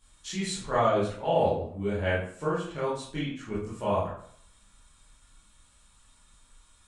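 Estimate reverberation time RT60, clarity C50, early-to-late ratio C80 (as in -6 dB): 0.60 s, 2.0 dB, 7.0 dB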